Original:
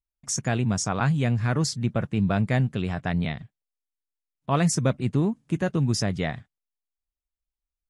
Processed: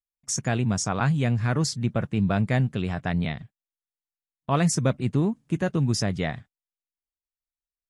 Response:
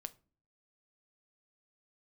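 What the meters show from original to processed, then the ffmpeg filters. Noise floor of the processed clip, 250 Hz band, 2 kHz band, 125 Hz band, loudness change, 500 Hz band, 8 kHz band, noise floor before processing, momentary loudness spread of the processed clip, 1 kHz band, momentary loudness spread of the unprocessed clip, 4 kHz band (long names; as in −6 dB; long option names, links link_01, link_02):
below −85 dBFS, 0.0 dB, 0.0 dB, 0.0 dB, 0.0 dB, 0.0 dB, 0.0 dB, below −85 dBFS, 7 LU, 0.0 dB, 7 LU, 0.0 dB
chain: -af "agate=range=-13dB:threshold=-46dB:ratio=16:detection=peak"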